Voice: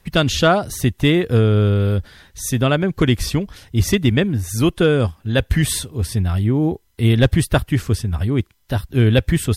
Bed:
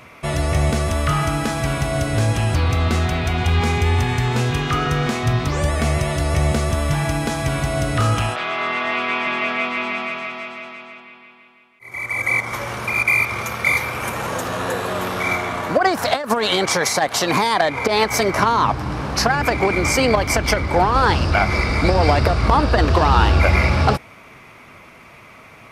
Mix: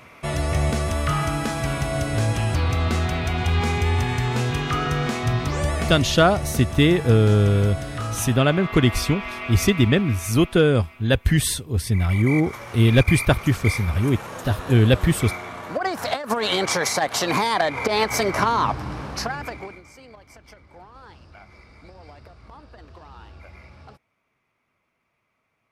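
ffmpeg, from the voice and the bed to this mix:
-filter_complex "[0:a]adelay=5750,volume=0.841[s0];[1:a]volume=1.5,afade=t=out:st=5.75:d=0.31:silence=0.446684,afade=t=in:st=15.66:d=0.84:silence=0.446684,afade=t=out:st=18.57:d=1.26:silence=0.0473151[s1];[s0][s1]amix=inputs=2:normalize=0"

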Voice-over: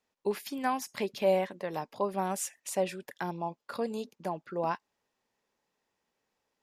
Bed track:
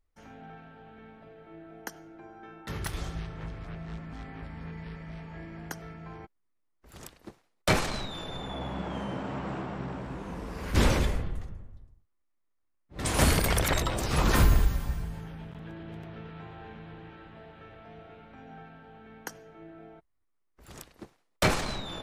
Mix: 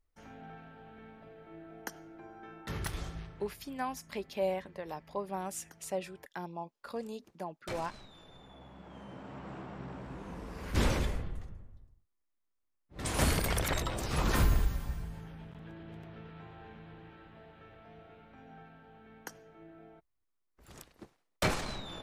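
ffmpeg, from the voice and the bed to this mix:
-filter_complex "[0:a]adelay=3150,volume=0.501[s0];[1:a]volume=3.16,afade=t=out:st=2.81:d=0.74:silence=0.16788,afade=t=in:st=8.78:d=1.47:silence=0.251189[s1];[s0][s1]amix=inputs=2:normalize=0"

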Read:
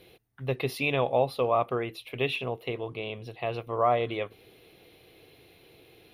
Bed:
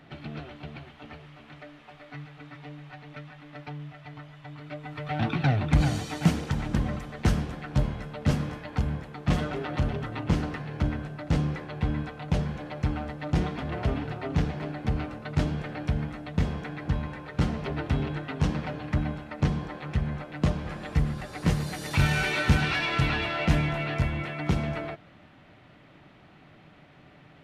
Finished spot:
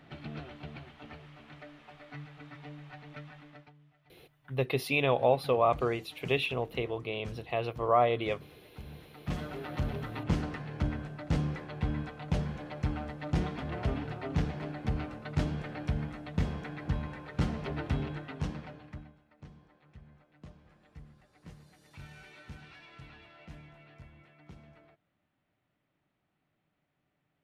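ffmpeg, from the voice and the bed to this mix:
-filter_complex "[0:a]adelay=4100,volume=0.944[s0];[1:a]volume=5.01,afade=t=out:st=3.37:d=0.35:silence=0.11885,afade=t=in:st=8.74:d=1.33:silence=0.133352,afade=t=out:st=17.87:d=1.25:silence=0.0841395[s1];[s0][s1]amix=inputs=2:normalize=0"

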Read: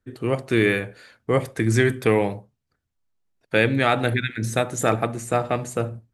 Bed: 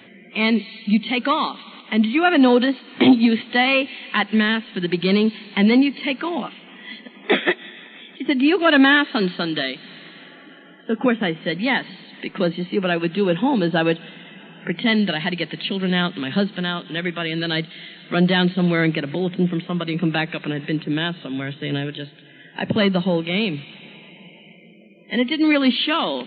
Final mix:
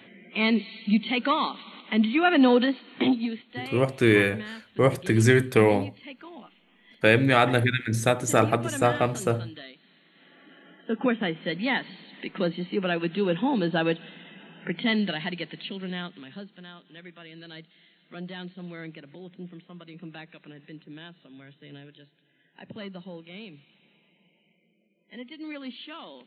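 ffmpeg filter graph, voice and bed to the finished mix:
-filter_complex "[0:a]adelay=3500,volume=1[s0];[1:a]volume=2.82,afade=t=out:st=2.63:d=0.81:silence=0.177828,afade=t=in:st=10.09:d=0.6:silence=0.211349,afade=t=out:st=14.85:d=1.55:silence=0.177828[s1];[s0][s1]amix=inputs=2:normalize=0"

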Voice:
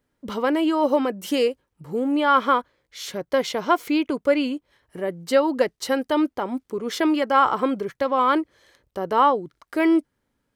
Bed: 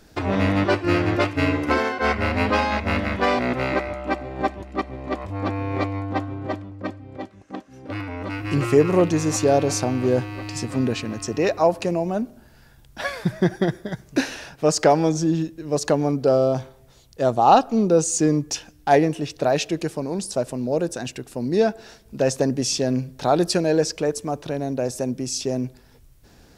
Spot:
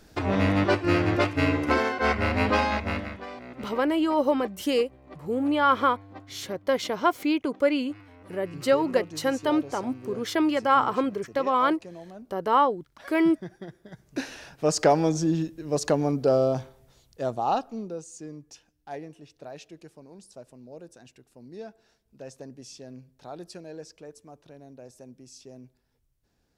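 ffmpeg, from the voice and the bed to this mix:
-filter_complex "[0:a]adelay=3350,volume=0.708[s0];[1:a]volume=4.73,afade=t=out:st=2.67:d=0.57:silence=0.141254,afade=t=in:st=13.79:d=1.05:silence=0.158489,afade=t=out:st=16.42:d=1.62:silence=0.125893[s1];[s0][s1]amix=inputs=2:normalize=0"

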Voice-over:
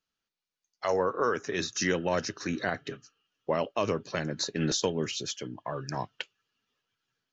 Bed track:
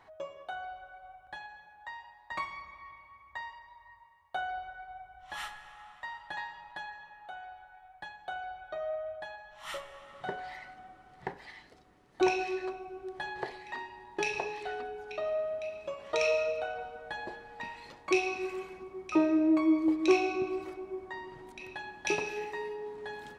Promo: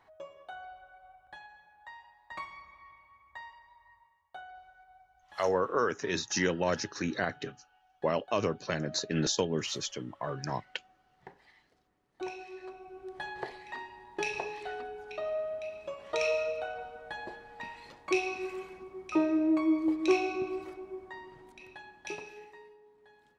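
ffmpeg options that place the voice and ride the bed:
-filter_complex "[0:a]adelay=4550,volume=0.891[s0];[1:a]volume=2,afade=t=out:st=3.98:d=0.46:silence=0.421697,afade=t=in:st=12.5:d=0.68:silence=0.281838,afade=t=out:st=20.56:d=2.26:silence=0.125893[s1];[s0][s1]amix=inputs=2:normalize=0"

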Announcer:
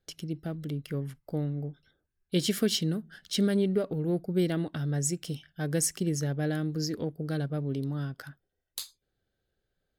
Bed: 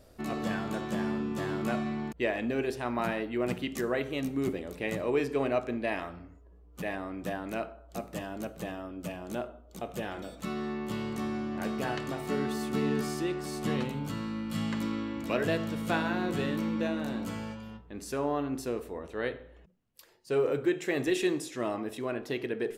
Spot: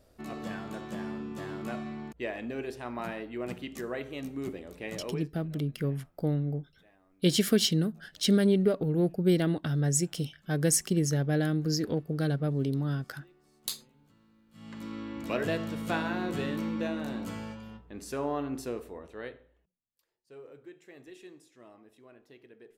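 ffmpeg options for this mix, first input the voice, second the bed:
-filter_complex "[0:a]adelay=4900,volume=1.33[s0];[1:a]volume=12.6,afade=t=out:st=5.01:d=0.3:silence=0.0668344,afade=t=in:st=14.52:d=0.74:silence=0.0421697,afade=t=out:st=18.61:d=1.08:silence=0.1[s1];[s0][s1]amix=inputs=2:normalize=0"

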